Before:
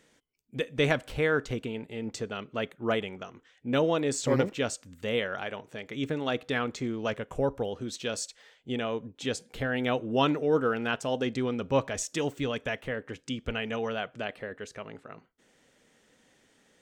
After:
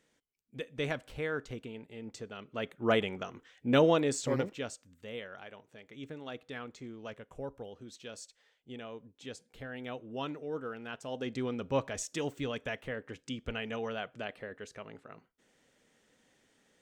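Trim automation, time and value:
2.36 s -9 dB
2.96 s +1.5 dB
3.90 s +1.5 dB
4.24 s -5 dB
5.07 s -13 dB
10.89 s -13 dB
11.40 s -5 dB

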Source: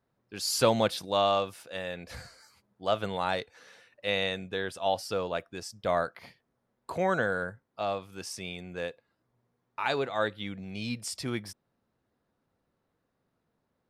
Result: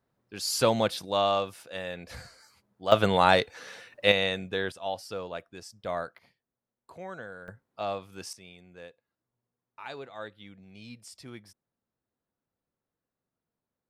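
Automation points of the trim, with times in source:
0 dB
from 2.92 s +9.5 dB
from 4.12 s +2.5 dB
from 4.72 s -5 dB
from 6.18 s -13.5 dB
from 7.48 s -1 dB
from 8.33 s -11.5 dB

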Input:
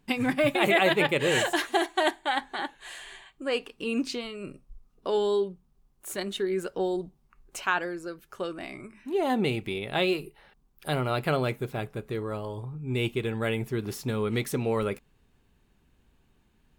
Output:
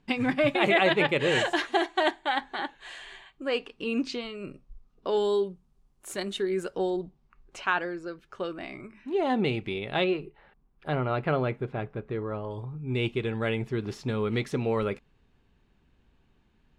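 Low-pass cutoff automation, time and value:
5.3 kHz
from 5.17 s 10 kHz
from 6.90 s 4.6 kHz
from 10.04 s 2.2 kHz
from 12.51 s 4.8 kHz

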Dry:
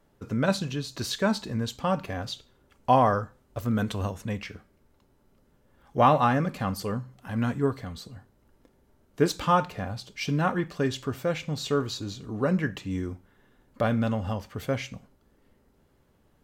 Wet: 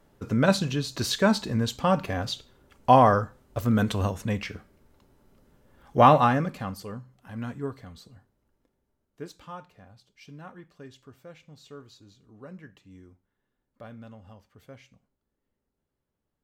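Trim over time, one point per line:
6.13 s +3.5 dB
6.86 s -7.5 dB
8.14 s -7.5 dB
9.51 s -19 dB

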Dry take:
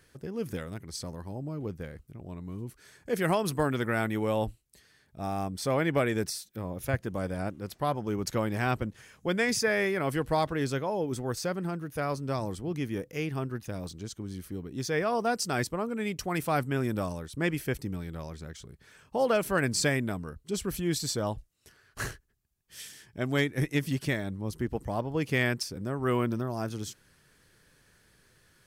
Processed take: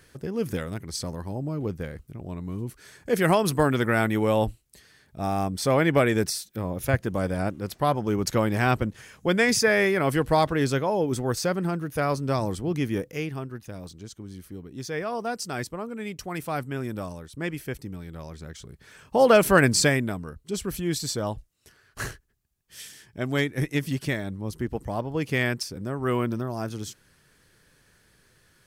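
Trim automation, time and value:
12.97 s +6 dB
13.46 s -2 dB
17.97 s -2 dB
19.49 s +10.5 dB
20.17 s +2 dB

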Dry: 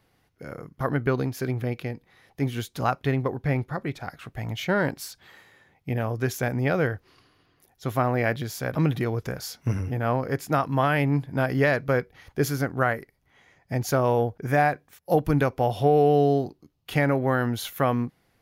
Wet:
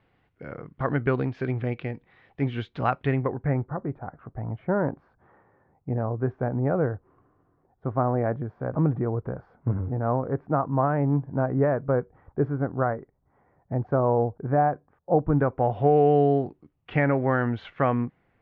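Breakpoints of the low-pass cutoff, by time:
low-pass 24 dB/octave
3.03 s 3.1 kHz
3.77 s 1.2 kHz
15.26 s 1.2 kHz
15.98 s 2.5 kHz

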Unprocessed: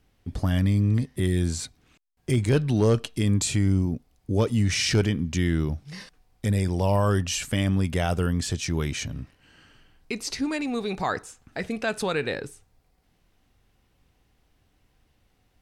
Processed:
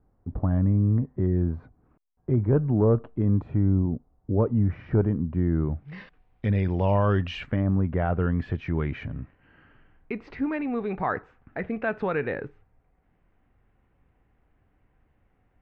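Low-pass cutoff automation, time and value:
low-pass 24 dB/octave
5.53 s 1.2 kHz
5.98 s 2.8 kHz
7.40 s 2.8 kHz
7.65 s 1.2 kHz
8.29 s 2.1 kHz

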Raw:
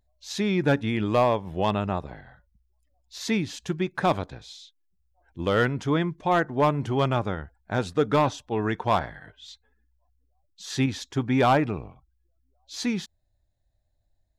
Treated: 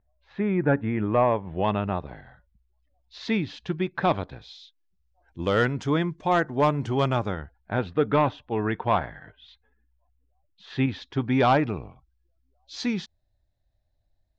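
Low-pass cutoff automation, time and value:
low-pass 24 dB/octave
1.01 s 2 kHz
2.15 s 4.2 kHz
4.26 s 4.2 kHz
5.59 s 7.9 kHz
7.17 s 7.9 kHz
7.77 s 3.2 kHz
10.78 s 3.2 kHz
11.52 s 5.6 kHz

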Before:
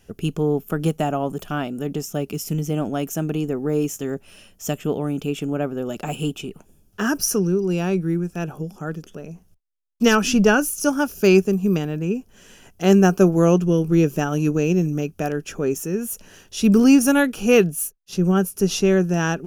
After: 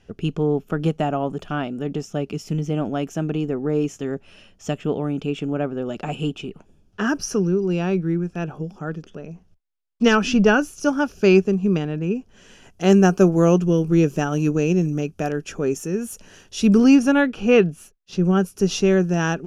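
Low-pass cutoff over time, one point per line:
12.05 s 4.5 kHz
12.85 s 8.3 kHz
16.60 s 8.3 kHz
17.15 s 3.4 kHz
17.75 s 3.4 kHz
18.61 s 6.7 kHz

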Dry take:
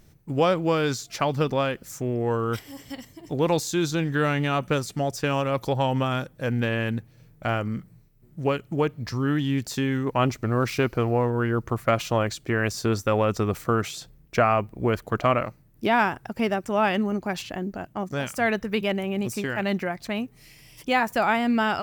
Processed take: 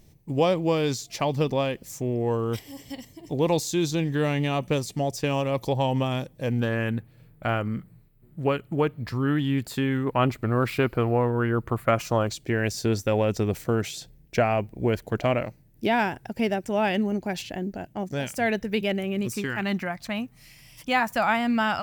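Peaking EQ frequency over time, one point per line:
peaking EQ -12.5 dB 0.47 oct
6.51 s 1.4 kHz
6.96 s 5.9 kHz
11.83 s 5.9 kHz
12.45 s 1.2 kHz
18.78 s 1.2 kHz
19.96 s 390 Hz

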